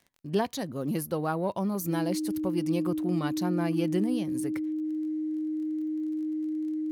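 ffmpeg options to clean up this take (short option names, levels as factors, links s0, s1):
-af "adeclick=t=4,bandreject=f=310:w=30"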